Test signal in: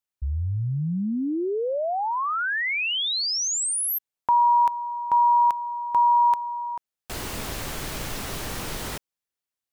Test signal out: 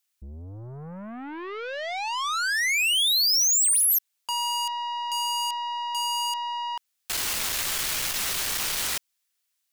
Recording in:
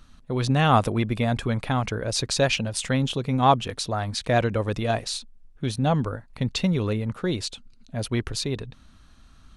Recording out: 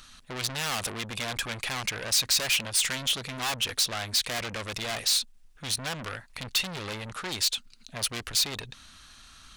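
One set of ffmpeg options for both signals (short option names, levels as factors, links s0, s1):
-af "aeval=exprs='(tanh(44.7*val(0)+0.15)-tanh(0.15))/44.7':c=same,tiltshelf=f=970:g=-9.5,volume=1.58"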